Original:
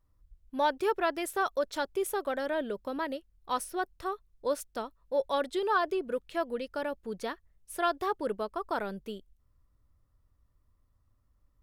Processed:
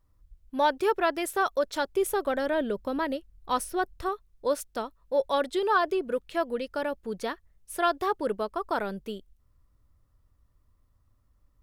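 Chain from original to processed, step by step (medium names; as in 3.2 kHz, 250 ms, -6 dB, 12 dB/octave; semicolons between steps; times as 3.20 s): 1.96–4.09 s: bass shelf 210 Hz +7 dB; trim +3.5 dB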